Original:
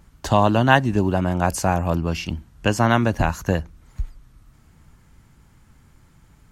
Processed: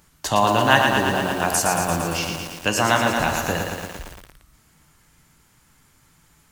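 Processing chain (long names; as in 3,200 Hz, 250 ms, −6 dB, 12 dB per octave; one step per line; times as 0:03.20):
spectral tilt +2.5 dB per octave
rectangular room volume 210 cubic metres, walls mixed, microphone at 0.44 metres
feedback echo at a low word length 114 ms, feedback 80%, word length 6 bits, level −4.5 dB
level −1 dB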